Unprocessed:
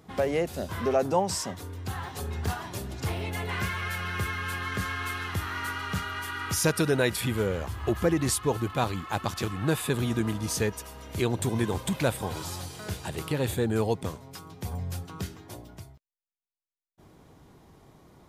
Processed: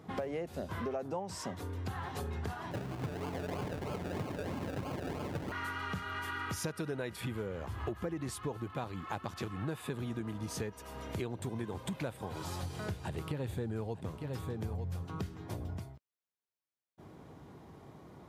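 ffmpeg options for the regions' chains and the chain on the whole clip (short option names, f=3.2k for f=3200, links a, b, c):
-filter_complex "[0:a]asettb=1/sr,asplit=3[a][b][c];[a]atrim=end=2.714[d];[b]atrim=start=2.71:end=5.52,asetpts=PTS-STARTPTS,afade=t=in:d=0.004:c=qsin,afade=t=out:st=2.806:d=0.004:c=qsin,aecho=1:1:6.8:0.69,atrim=end_sample=123921,acrusher=samples=33:mix=1:aa=0.000001:lfo=1:lforange=19.8:lforate=3.1[e];[c]atrim=start=5.516[f];[d][e]acrossfade=d=0.004:c1=hsin:c2=qsin[g];[g][f]acrossfade=d=0.004:c1=qsin:c2=hsin,asettb=1/sr,asplit=3[h][i][j];[h]atrim=end=12.624[k];[i]atrim=start=12.62:end=15.79,asetpts=PTS-STARTPTS,afade=t=in:d=0.004:c=qsin,afade=t=out:st=3.166:d=0.004:c=qsin,lowshelf=f=96:g=11.5,aecho=1:1:904:0.266,atrim=end_sample=139797[l];[j]atrim=start=15.786[m];[k][l]acrossfade=d=0.004:c1=hsin:c2=qsin[n];[n][m]acrossfade=d=0.004:c1=qsin:c2=hsin,highpass=75,highshelf=f=3.3k:g=-9.5,acompressor=threshold=-38dB:ratio=6,volume=2.5dB"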